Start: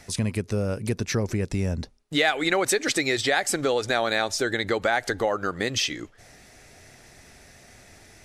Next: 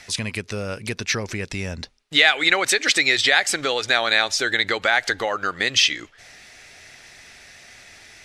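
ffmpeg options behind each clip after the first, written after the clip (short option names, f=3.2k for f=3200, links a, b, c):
-af "equalizer=f=2.9k:w=0.36:g=15,volume=-5dB"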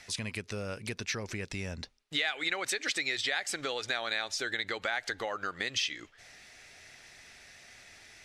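-af "acompressor=threshold=-25dB:ratio=2,volume=-8dB"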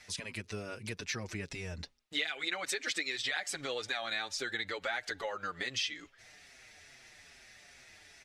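-filter_complex "[0:a]asplit=2[a][b];[b]adelay=6,afreqshift=-2.4[c];[a][c]amix=inputs=2:normalize=1"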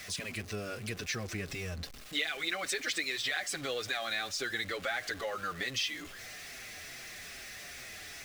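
-af "aeval=exprs='val(0)+0.5*0.0075*sgn(val(0))':c=same,asuperstop=centerf=910:order=4:qfactor=6.5"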